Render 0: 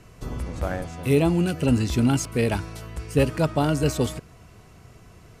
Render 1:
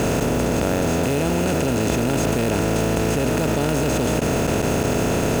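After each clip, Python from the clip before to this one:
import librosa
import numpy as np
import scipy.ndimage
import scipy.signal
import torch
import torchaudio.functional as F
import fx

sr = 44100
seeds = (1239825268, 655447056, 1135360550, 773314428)

y = fx.bin_compress(x, sr, power=0.2)
y = fx.level_steps(y, sr, step_db=20)
y = fx.quant_float(y, sr, bits=2)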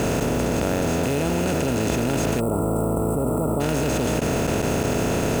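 y = fx.spec_box(x, sr, start_s=2.4, length_s=1.2, low_hz=1400.0, high_hz=7500.0, gain_db=-26)
y = y * 10.0 ** (-2.0 / 20.0)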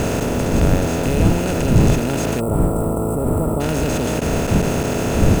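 y = fx.dmg_wind(x, sr, seeds[0], corner_hz=160.0, level_db=-22.0)
y = y * 10.0 ** (2.0 / 20.0)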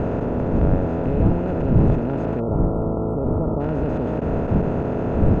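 y = scipy.signal.sosfilt(scipy.signal.butter(2, 1100.0, 'lowpass', fs=sr, output='sos'), x)
y = y * 10.0 ** (-2.5 / 20.0)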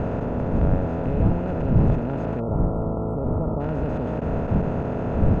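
y = fx.peak_eq(x, sr, hz=350.0, db=-4.5, octaves=0.82)
y = y * 10.0 ** (-1.5 / 20.0)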